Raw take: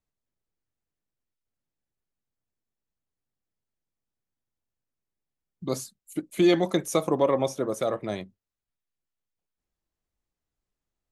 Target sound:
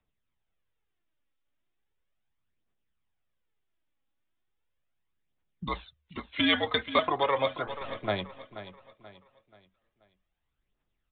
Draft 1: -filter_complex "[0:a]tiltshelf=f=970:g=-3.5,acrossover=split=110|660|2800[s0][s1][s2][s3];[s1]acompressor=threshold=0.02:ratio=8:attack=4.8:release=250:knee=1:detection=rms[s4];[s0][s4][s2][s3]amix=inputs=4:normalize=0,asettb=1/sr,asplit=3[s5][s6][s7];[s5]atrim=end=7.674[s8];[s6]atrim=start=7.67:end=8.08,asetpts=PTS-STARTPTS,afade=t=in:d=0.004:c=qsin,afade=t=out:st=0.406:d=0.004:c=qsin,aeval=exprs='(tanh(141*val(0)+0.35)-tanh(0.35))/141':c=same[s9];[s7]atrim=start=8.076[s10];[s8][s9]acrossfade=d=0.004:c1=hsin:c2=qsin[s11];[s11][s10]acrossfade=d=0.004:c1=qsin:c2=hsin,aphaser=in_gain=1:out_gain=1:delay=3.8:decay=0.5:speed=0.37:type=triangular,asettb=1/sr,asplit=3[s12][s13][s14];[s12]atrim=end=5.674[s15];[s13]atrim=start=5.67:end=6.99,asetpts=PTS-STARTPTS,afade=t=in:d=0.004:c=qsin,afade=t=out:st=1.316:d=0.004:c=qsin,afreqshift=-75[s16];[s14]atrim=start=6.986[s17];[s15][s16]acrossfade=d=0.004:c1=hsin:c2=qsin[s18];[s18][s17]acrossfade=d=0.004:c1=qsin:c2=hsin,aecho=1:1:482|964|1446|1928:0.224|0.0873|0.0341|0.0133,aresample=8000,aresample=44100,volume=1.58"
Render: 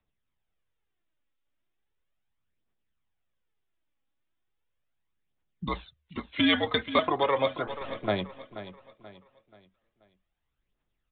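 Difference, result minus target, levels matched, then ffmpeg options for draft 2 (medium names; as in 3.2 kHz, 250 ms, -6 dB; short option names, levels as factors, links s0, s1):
compression: peak gain reduction -5.5 dB
-filter_complex "[0:a]tiltshelf=f=970:g=-3.5,acrossover=split=110|660|2800[s0][s1][s2][s3];[s1]acompressor=threshold=0.00944:ratio=8:attack=4.8:release=250:knee=1:detection=rms[s4];[s0][s4][s2][s3]amix=inputs=4:normalize=0,asettb=1/sr,asplit=3[s5][s6][s7];[s5]atrim=end=7.674[s8];[s6]atrim=start=7.67:end=8.08,asetpts=PTS-STARTPTS,afade=t=in:d=0.004:c=qsin,afade=t=out:st=0.406:d=0.004:c=qsin,aeval=exprs='(tanh(141*val(0)+0.35)-tanh(0.35))/141':c=same[s9];[s7]atrim=start=8.076[s10];[s8][s9]acrossfade=d=0.004:c1=hsin:c2=qsin[s11];[s11][s10]acrossfade=d=0.004:c1=qsin:c2=hsin,aphaser=in_gain=1:out_gain=1:delay=3.8:decay=0.5:speed=0.37:type=triangular,asettb=1/sr,asplit=3[s12][s13][s14];[s12]atrim=end=5.674[s15];[s13]atrim=start=5.67:end=6.99,asetpts=PTS-STARTPTS,afade=t=in:d=0.004:c=qsin,afade=t=out:st=1.316:d=0.004:c=qsin,afreqshift=-75[s16];[s14]atrim=start=6.986[s17];[s15][s16]acrossfade=d=0.004:c1=hsin:c2=qsin[s18];[s18][s17]acrossfade=d=0.004:c1=qsin:c2=hsin,aecho=1:1:482|964|1446|1928:0.224|0.0873|0.0341|0.0133,aresample=8000,aresample=44100,volume=1.58"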